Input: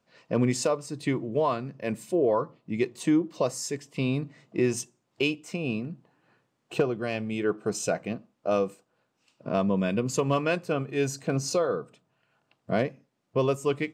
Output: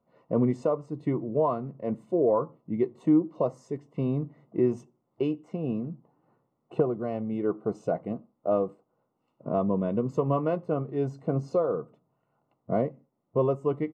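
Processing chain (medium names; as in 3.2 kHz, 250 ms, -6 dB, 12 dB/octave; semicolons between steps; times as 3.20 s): Savitzky-Golay filter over 65 samples; doubling 13 ms -13 dB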